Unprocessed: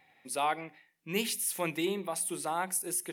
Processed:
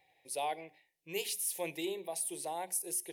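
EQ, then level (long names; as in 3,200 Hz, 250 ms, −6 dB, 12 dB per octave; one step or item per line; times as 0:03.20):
phaser with its sweep stopped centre 540 Hz, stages 4
−2.5 dB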